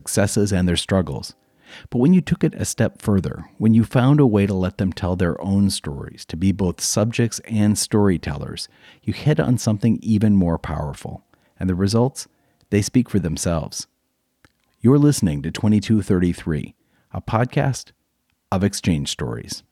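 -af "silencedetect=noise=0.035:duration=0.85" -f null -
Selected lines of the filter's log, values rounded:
silence_start: 13.83
silence_end: 14.84 | silence_duration: 1.01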